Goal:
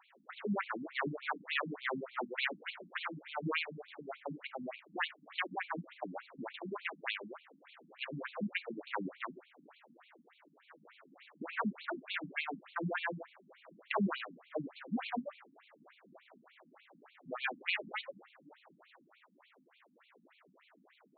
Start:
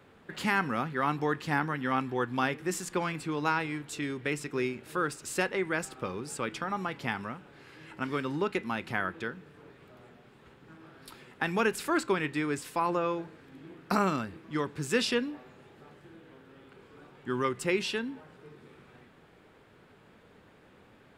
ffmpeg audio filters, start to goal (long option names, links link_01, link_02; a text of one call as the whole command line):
ffmpeg -i in.wav -af "highshelf=frequency=6500:gain=-7,aeval=exprs='abs(val(0))':channel_layout=same,afftfilt=real='re*between(b*sr/1024,200*pow(3200/200,0.5+0.5*sin(2*PI*3.4*pts/sr))/1.41,200*pow(3200/200,0.5+0.5*sin(2*PI*3.4*pts/sr))*1.41)':imag='im*between(b*sr/1024,200*pow(3200/200,0.5+0.5*sin(2*PI*3.4*pts/sr))/1.41,200*pow(3200/200,0.5+0.5*sin(2*PI*3.4*pts/sr))*1.41)':win_size=1024:overlap=0.75,volume=4dB" out.wav